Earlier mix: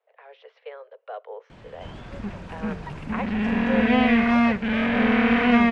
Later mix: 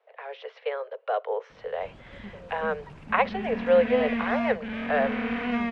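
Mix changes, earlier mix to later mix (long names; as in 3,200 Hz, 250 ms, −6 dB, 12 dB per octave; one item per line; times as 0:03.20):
speech +9.0 dB
background −10.0 dB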